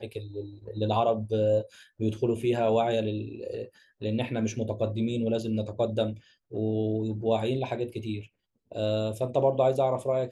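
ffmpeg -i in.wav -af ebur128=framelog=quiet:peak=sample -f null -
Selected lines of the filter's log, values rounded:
Integrated loudness:
  I:         -28.5 LUFS
  Threshold: -39.0 LUFS
Loudness range:
  LRA:         2.8 LU
  Threshold: -49.4 LUFS
  LRA low:   -30.7 LUFS
  LRA high:  -27.9 LUFS
Sample peak:
  Peak:      -12.9 dBFS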